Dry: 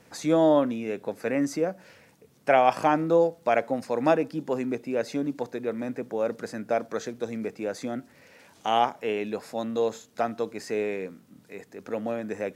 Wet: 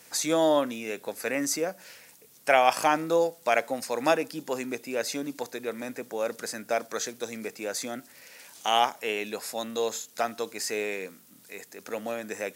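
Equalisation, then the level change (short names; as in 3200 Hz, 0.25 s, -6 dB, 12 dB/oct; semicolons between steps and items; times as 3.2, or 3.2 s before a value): tilt +3 dB/oct; high shelf 5300 Hz +5.5 dB; 0.0 dB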